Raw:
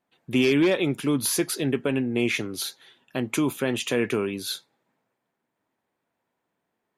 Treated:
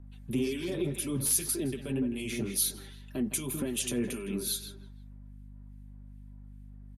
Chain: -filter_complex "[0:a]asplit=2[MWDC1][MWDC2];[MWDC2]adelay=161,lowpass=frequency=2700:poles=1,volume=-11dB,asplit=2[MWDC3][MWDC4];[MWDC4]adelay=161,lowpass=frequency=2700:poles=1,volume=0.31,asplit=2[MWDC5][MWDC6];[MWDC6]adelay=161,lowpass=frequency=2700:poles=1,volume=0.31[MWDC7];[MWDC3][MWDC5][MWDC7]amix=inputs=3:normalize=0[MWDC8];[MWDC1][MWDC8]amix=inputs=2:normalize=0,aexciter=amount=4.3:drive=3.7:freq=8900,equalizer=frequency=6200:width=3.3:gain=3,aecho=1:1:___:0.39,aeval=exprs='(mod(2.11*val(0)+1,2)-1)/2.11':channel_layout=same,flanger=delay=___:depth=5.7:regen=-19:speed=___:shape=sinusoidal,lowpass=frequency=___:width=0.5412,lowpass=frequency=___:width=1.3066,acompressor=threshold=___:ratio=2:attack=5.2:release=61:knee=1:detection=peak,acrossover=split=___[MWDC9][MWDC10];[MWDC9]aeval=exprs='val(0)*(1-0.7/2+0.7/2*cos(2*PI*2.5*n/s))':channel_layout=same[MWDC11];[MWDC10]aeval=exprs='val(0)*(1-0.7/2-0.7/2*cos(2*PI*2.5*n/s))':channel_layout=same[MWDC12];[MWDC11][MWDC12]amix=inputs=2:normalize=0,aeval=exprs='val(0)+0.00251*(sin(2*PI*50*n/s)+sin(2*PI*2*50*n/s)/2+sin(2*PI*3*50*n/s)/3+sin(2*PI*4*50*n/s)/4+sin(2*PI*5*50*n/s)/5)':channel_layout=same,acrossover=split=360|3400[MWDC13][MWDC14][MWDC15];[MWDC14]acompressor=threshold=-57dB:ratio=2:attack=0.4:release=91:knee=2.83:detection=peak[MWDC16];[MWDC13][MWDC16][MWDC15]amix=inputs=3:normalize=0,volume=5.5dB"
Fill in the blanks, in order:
5.1, 3, 1.9, 12000, 12000, -33dB, 1900